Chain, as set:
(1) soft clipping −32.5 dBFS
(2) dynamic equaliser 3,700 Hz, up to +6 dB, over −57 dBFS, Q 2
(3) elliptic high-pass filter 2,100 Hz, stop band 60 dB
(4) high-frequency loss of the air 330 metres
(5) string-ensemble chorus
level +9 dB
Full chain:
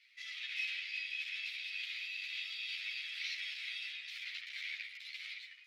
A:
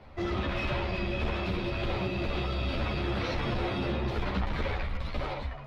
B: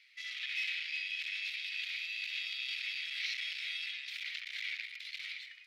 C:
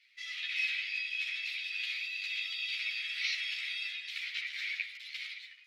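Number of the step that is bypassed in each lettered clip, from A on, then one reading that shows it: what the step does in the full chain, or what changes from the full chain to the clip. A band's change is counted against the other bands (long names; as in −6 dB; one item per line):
3, change in crest factor −6.0 dB
5, change in integrated loudness +3.0 LU
1, distortion level −8 dB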